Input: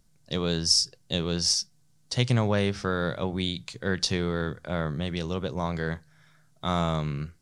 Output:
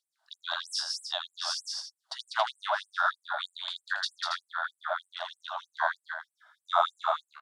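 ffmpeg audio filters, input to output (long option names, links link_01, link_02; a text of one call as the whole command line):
ffmpeg -i in.wav -af "firequalizer=gain_entry='entry(1500,0);entry(2300,-20);entry(3400,-8);entry(6000,-21)':delay=0.05:min_phase=1,aecho=1:1:81.63|195.3|277:0.355|0.708|0.447,afftfilt=real='re*gte(b*sr/1024,570*pow(7700/570,0.5+0.5*sin(2*PI*3.2*pts/sr)))':imag='im*gte(b*sr/1024,570*pow(7700/570,0.5+0.5*sin(2*PI*3.2*pts/sr)))':win_size=1024:overlap=0.75,volume=7.5dB" out.wav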